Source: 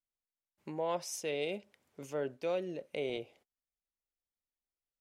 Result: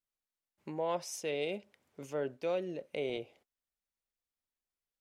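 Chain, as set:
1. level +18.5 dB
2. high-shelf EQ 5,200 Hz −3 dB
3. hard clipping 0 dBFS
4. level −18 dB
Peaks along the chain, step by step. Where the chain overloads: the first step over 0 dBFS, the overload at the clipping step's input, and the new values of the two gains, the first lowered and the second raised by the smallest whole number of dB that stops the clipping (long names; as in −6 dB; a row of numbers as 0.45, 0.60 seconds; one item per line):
−4.0, −4.5, −4.5, −22.5 dBFS
no step passes full scale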